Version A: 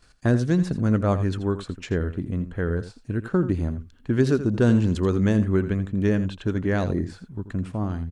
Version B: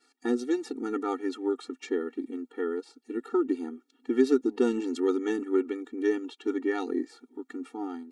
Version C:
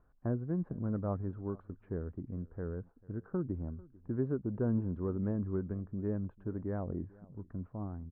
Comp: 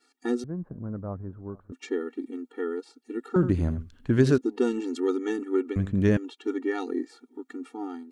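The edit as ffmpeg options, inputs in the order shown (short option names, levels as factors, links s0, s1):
-filter_complex "[0:a]asplit=2[s0][s1];[1:a]asplit=4[s2][s3][s4][s5];[s2]atrim=end=0.442[s6];[2:a]atrim=start=0.438:end=1.722[s7];[s3]atrim=start=1.718:end=3.362[s8];[s0]atrim=start=3.358:end=4.382[s9];[s4]atrim=start=4.378:end=5.762[s10];[s1]atrim=start=5.758:end=6.172[s11];[s5]atrim=start=6.168[s12];[s6][s7]acrossfade=d=0.004:c1=hsin:c2=hsin[s13];[s13][s8]acrossfade=d=0.004:c1=hsin:c2=hsin[s14];[s14][s9]acrossfade=d=0.004:c1=hsin:c2=hsin[s15];[s15][s10]acrossfade=d=0.004:c1=hsin:c2=hsin[s16];[s16][s11]acrossfade=d=0.004:c1=hsin:c2=hsin[s17];[s17][s12]acrossfade=d=0.004:c1=hsin:c2=hsin"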